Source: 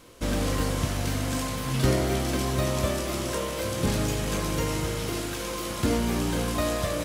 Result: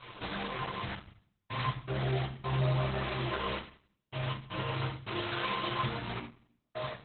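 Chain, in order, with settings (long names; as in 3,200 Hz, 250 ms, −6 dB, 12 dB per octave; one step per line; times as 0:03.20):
fade-out on the ending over 0.95 s
0:02.34–0:05.14: high-shelf EQ 6,500 Hz −5.5 dB
downward compressor 20 to 1, threshold −34 dBFS, peak gain reduction 17 dB
flanger 1.9 Hz, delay 7.6 ms, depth 3.1 ms, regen +1%
gate pattern "xxxxx...x.xx.x" 80 BPM −60 dB
flat-topped bell 1,700 Hz +10 dB 2.9 octaves
mains-hum notches 50/100/150 Hz
convolution reverb RT60 0.50 s, pre-delay 4 ms, DRR −4 dB
level −2 dB
Opus 8 kbit/s 48,000 Hz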